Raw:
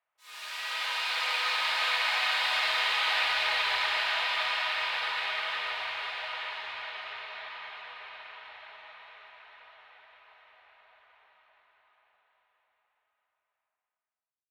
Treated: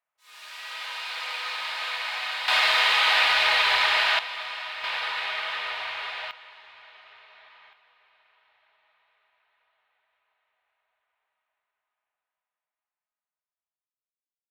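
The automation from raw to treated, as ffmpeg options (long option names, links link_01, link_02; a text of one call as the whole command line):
ffmpeg -i in.wav -af "asetnsamples=nb_out_samples=441:pad=0,asendcmd='2.48 volume volume 7dB;4.19 volume volume -4.5dB;4.84 volume volume 2dB;6.31 volume volume -11dB;7.73 volume volume -18dB',volume=-3dB" out.wav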